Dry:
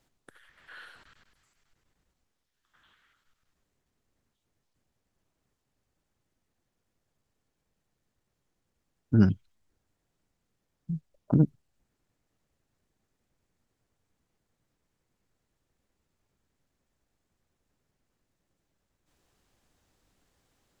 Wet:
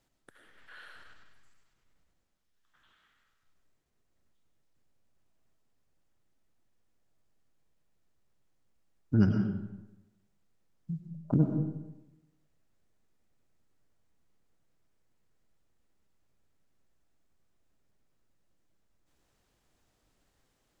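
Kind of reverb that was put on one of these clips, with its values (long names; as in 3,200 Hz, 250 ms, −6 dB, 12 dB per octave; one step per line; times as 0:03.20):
comb and all-pass reverb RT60 1 s, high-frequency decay 0.65×, pre-delay 65 ms, DRR 3.5 dB
level −3.5 dB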